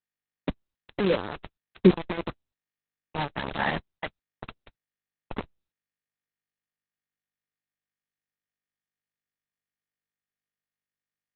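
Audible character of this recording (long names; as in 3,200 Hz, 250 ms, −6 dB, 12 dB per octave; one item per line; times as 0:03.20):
sample-and-hold tremolo 2.1 Hz, depth 95%
phaser sweep stages 12, 0.2 Hz, lowest notch 410–1,500 Hz
a quantiser's noise floor 6 bits, dither none
Opus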